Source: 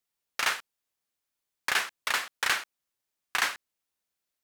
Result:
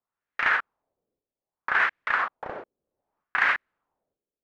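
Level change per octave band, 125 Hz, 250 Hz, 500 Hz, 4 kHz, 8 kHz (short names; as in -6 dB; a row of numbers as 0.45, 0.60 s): n/a, +3.5 dB, +4.5 dB, -9.0 dB, under -20 dB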